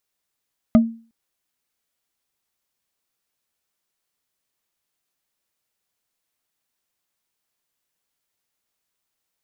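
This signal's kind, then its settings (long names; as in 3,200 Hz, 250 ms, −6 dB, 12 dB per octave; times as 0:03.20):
struck wood bar, length 0.36 s, lowest mode 228 Hz, decay 0.38 s, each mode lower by 8 dB, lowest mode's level −6 dB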